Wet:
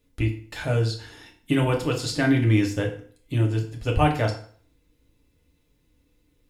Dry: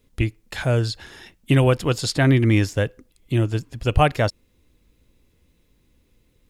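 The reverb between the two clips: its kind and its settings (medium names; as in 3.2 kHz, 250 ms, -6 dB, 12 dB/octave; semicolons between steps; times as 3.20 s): FDN reverb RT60 0.5 s, low-frequency decay 0.95×, high-frequency decay 0.85×, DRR 0 dB; trim -6.5 dB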